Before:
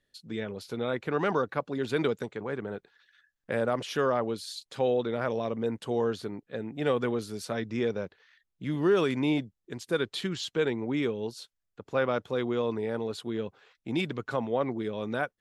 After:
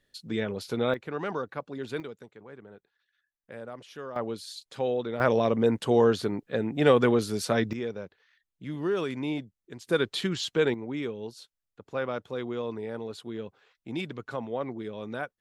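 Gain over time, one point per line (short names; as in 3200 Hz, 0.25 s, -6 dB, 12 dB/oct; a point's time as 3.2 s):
+4.5 dB
from 0.94 s -5 dB
from 2 s -13 dB
from 4.16 s -2 dB
from 5.2 s +7 dB
from 7.73 s -4.5 dB
from 9.85 s +3 dB
from 10.74 s -4 dB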